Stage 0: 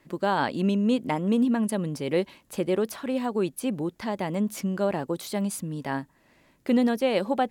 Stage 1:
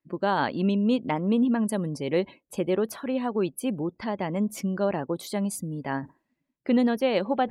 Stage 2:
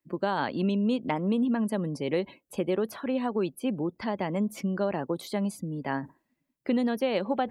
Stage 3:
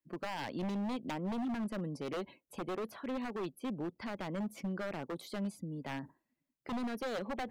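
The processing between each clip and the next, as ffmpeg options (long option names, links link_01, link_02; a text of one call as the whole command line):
ffmpeg -i in.wav -af "afftdn=noise_reduction=28:noise_floor=-47,areverse,acompressor=mode=upward:threshold=-34dB:ratio=2.5,areverse" out.wav
ffmpeg -i in.wav -filter_complex "[0:a]acrossover=split=130|4600[link_01][link_02][link_03];[link_01]acompressor=threshold=-50dB:ratio=4[link_04];[link_02]acompressor=threshold=-23dB:ratio=4[link_05];[link_03]acompressor=threshold=-53dB:ratio=4[link_06];[link_04][link_05][link_06]amix=inputs=3:normalize=0,highshelf=frequency=10000:gain=7.5" out.wav
ffmpeg -i in.wav -filter_complex "[0:a]acrossover=split=4500[link_01][link_02];[link_01]aeval=exprs='0.0631*(abs(mod(val(0)/0.0631+3,4)-2)-1)':channel_layout=same[link_03];[link_02]alimiter=level_in=14dB:limit=-24dB:level=0:latency=1:release=358,volume=-14dB[link_04];[link_03][link_04]amix=inputs=2:normalize=0,volume=-7.5dB" out.wav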